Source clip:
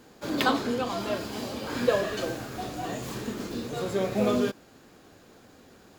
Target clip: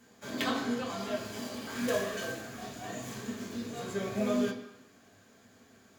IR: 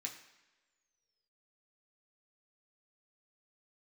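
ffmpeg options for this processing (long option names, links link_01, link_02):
-filter_complex "[0:a]asettb=1/sr,asplit=3[link_01][link_02][link_03];[link_01]atrim=end=1.264[link_04];[link_02]atrim=start=1.26:end=2.41,asetpts=PTS-STARTPTS,afade=type=in:duration=0.004:curve=qsin,afade=type=out:start_time=1.146:duration=0.004:curve=qsin,acrusher=bits=3:mode=log:mix=0:aa=0.000001[link_05];[link_03]atrim=start=2.406[link_06];[link_04][link_05]acrossfade=duration=0.004:curve1=hsin:curve2=qsin[link_07];[link_07][link_06]acrossfade=duration=0.004:curve1=qsin:curve2=hsin[link_08];[1:a]atrim=start_sample=2205,afade=type=out:start_time=0.43:duration=0.01,atrim=end_sample=19404,asetrate=38808,aresample=44100[link_09];[link_08][link_09]afir=irnorm=-1:irlink=0,volume=-3.5dB"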